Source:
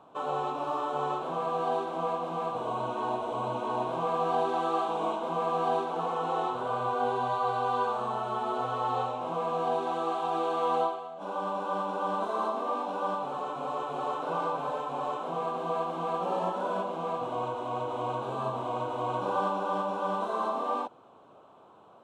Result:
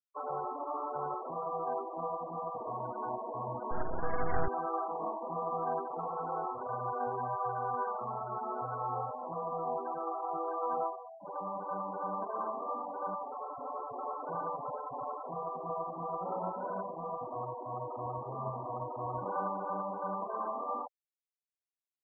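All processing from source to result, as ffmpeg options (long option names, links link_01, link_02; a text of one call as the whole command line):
ffmpeg -i in.wav -filter_complex "[0:a]asettb=1/sr,asplit=3[link_01][link_02][link_03];[link_01]atrim=end=3.714[link_04];[link_02]atrim=start=3.71:end=4.48,asetpts=PTS-STARTPTS,afade=type=in:duration=0.004:curve=qsin,afade=type=out:start_time=0.766:duration=0.004:curve=qsin,highpass=180,equalizer=frequency=390:width=0.6:gain=7,aeval=exprs='max(val(0),0)':channel_layout=same[link_05];[link_03]atrim=start=4.476[link_06];[link_04][link_05]acrossfade=duration=0.004:curve1=hsin:curve2=qsin[link_07];[link_07][link_06]acrossfade=duration=0.004:curve1=qsin:curve2=hsin,highshelf=frequency=3900:gain=7,afftfilt=real='re*gte(hypot(re,im),0.0447)':imag='im*gte(hypot(re,im),0.0447)':win_size=1024:overlap=0.75,asubboost=boost=3:cutoff=140,volume=-5.5dB" out.wav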